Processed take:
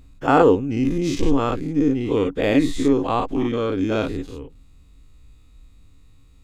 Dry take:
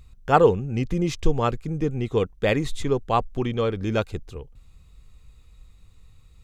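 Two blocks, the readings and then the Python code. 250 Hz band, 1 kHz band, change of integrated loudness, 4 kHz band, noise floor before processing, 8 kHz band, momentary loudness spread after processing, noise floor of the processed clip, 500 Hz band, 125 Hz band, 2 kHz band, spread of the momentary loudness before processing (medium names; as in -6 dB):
+8.0 dB, +1.5 dB, +3.5 dB, +2.0 dB, -53 dBFS, +2.5 dB, 8 LU, -50 dBFS, +2.5 dB, -1.5 dB, +2.0 dB, 10 LU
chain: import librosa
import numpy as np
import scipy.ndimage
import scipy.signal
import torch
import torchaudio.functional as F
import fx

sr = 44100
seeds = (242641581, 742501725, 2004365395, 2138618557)

y = fx.spec_dilate(x, sr, span_ms=120)
y = fx.peak_eq(y, sr, hz=280.0, db=15.0, octaves=0.33)
y = y * 10.0 ** (-4.5 / 20.0)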